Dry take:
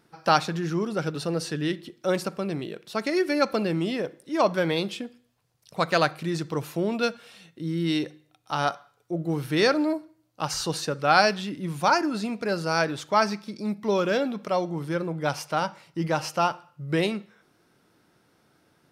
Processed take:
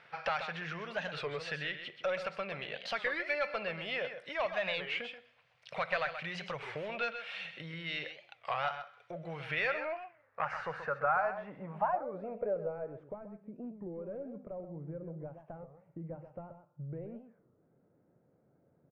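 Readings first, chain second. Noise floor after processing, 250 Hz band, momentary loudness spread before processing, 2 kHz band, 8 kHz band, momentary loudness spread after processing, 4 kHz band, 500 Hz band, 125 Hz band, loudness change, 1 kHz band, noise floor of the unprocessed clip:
-71 dBFS, -19.5 dB, 10 LU, -6.5 dB, under -25 dB, 14 LU, -11.0 dB, -11.0 dB, -15.0 dB, -11.0 dB, -11.0 dB, -66 dBFS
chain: compressor 4:1, threshold -37 dBFS, peak gain reduction 19.5 dB; tone controls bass -3 dB, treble +3 dB; overdrive pedal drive 15 dB, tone 1300 Hz, clips at -20.5 dBFS; EQ curve 150 Hz 0 dB, 320 Hz -18 dB, 540 Hz +1 dB, 960 Hz -3 dB, 2300 Hz +7 dB, 3800 Hz -6 dB, 8700 Hz +3 dB; echo 0.13 s -9.5 dB; low-pass sweep 3600 Hz -> 300 Hz, 9.34–13.29; record warp 33 1/3 rpm, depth 250 cents

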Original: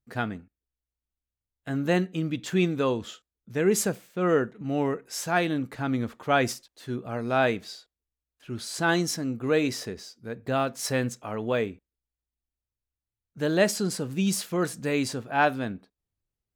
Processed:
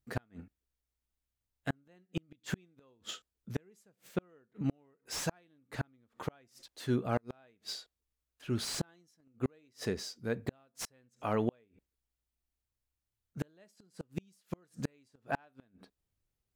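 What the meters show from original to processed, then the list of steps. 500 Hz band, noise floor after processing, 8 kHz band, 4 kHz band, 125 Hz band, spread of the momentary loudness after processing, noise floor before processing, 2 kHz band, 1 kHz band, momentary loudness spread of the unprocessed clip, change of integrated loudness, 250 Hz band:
-14.0 dB, under -85 dBFS, -12.0 dB, -9.5 dB, -8.5 dB, 13 LU, under -85 dBFS, -16.0 dB, -14.5 dB, 12 LU, -12.0 dB, -12.0 dB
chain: flipped gate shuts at -21 dBFS, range -41 dB; slew limiter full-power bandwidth 75 Hz; gain +1.5 dB

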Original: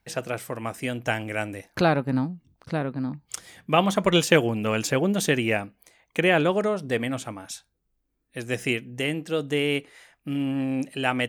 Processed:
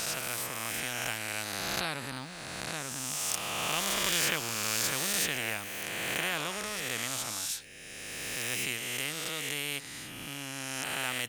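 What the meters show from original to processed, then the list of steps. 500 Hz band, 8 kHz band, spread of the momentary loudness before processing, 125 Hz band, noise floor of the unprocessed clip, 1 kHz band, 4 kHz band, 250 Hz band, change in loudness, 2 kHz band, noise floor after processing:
-16.0 dB, +5.5 dB, 16 LU, -14.5 dB, -75 dBFS, -8.5 dB, -0.5 dB, -17.0 dB, -6.5 dB, -4.5 dB, -44 dBFS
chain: spectral swells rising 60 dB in 1.49 s; passive tone stack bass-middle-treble 5-5-5; spectral compressor 2:1; gain +1 dB

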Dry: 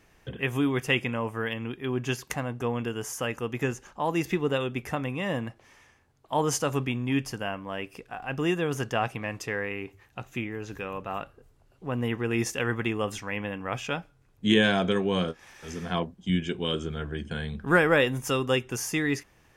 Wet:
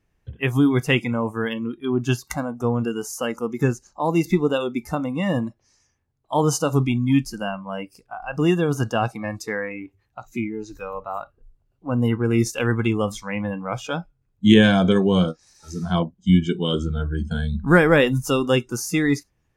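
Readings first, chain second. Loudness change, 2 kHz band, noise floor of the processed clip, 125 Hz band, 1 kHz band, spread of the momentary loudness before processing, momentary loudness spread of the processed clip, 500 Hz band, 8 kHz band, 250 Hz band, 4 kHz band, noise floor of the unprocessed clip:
+7.0 dB, +3.0 dB, -69 dBFS, +9.0 dB, +4.5 dB, 12 LU, 14 LU, +6.0 dB, +3.5 dB, +9.0 dB, +3.0 dB, -62 dBFS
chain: spectral noise reduction 19 dB; low shelf 260 Hz +11 dB; gain +3.5 dB

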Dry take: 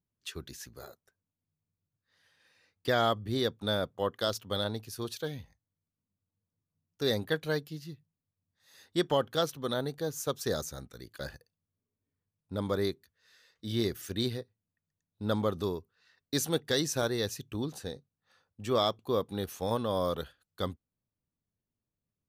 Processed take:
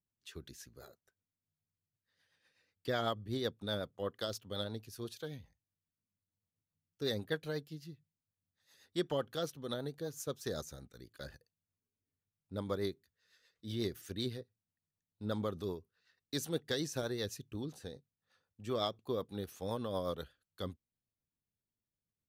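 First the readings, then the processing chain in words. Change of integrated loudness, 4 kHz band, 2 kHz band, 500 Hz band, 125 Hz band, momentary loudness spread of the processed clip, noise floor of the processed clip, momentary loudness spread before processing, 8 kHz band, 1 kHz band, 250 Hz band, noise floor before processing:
-7.0 dB, -7.5 dB, -8.0 dB, -7.0 dB, -6.5 dB, 16 LU, under -85 dBFS, 15 LU, -8.5 dB, -9.0 dB, -6.5 dB, under -85 dBFS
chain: rotary speaker horn 8 Hz; gain -5 dB

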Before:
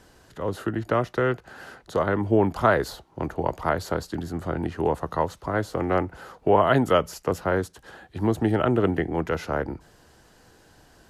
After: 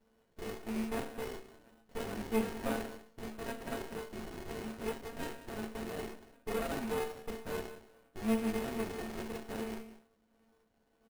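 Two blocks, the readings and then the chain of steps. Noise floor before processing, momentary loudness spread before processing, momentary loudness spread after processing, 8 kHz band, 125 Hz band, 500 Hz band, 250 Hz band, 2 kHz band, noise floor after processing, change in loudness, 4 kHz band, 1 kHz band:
-56 dBFS, 13 LU, 12 LU, -5.0 dB, -19.5 dB, -15.0 dB, -11.5 dB, -13.5 dB, -73 dBFS, -14.0 dB, -9.0 dB, -17.5 dB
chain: rattling part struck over -37 dBFS, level -12 dBFS; in parallel at -8.5 dB: Schmitt trigger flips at -26 dBFS; on the sum: metallic resonator 220 Hz, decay 0.51 s, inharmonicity 0.008; echo 0.185 s -14.5 dB; careless resampling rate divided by 4×, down none, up hold; running maximum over 33 samples; gain +1.5 dB

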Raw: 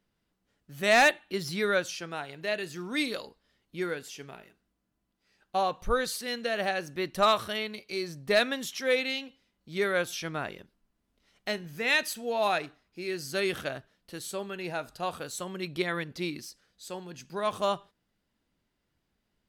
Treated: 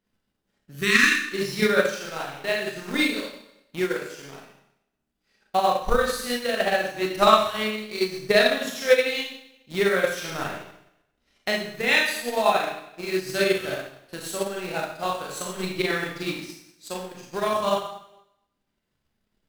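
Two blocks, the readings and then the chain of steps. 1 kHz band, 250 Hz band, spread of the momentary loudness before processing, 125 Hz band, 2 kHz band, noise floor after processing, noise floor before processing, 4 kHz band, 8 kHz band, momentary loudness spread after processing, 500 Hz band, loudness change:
+5.5 dB, +6.5 dB, 16 LU, +4.5 dB, +6.0 dB, -78 dBFS, -79 dBFS, +5.5 dB, +5.0 dB, 16 LU, +6.5 dB, +6.0 dB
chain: in parallel at -5.5 dB: requantised 6-bit, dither none; on the sum: spectral repair 0.77–1.26, 420–1000 Hz before; Schroeder reverb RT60 0.86 s, combs from 29 ms, DRR -4.5 dB; transient shaper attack +8 dB, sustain -5 dB; gain -5 dB

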